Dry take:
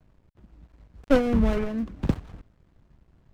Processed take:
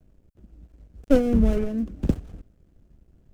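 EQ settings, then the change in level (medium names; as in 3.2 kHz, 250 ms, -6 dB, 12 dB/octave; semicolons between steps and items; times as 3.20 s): graphic EQ 125/1000/2000/4000 Hz -5/-12/-7/-7 dB; +4.0 dB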